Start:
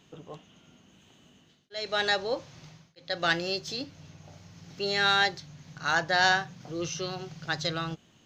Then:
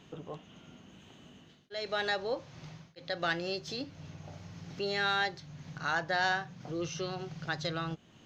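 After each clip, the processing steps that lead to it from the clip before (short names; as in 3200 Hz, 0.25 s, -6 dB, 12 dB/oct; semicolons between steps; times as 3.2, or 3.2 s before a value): high shelf 4500 Hz -9 dB; compressor 1.5:1, threshold -49 dBFS, peak gain reduction 10.5 dB; gain +4.5 dB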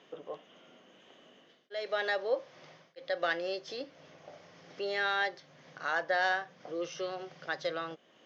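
speaker cabinet 470–5100 Hz, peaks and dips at 530 Hz +5 dB, 880 Hz -6 dB, 1400 Hz -4 dB, 2600 Hz -6 dB, 4100 Hz -9 dB; gain +3 dB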